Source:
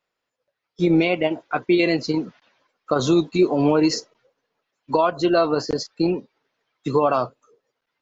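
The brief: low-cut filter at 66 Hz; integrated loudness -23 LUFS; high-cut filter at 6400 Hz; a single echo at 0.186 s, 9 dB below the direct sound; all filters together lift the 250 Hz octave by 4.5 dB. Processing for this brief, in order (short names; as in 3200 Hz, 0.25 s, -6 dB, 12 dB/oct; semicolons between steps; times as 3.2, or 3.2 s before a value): HPF 66 Hz; LPF 6400 Hz; bell 250 Hz +7 dB; echo 0.186 s -9 dB; gain -5 dB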